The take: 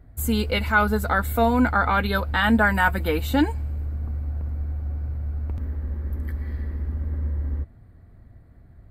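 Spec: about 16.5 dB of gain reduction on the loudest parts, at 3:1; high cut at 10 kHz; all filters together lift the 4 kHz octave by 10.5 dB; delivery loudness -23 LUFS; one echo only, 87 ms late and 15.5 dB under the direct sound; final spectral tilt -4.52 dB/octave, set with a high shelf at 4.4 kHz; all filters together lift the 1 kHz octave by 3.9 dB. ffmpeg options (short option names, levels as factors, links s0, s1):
-af "lowpass=10000,equalizer=f=1000:t=o:g=4,equalizer=f=4000:t=o:g=9,highshelf=f=4400:g=9,acompressor=threshold=0.02:ratio=3,aecho=1:1:87:0.168,volume=3.76"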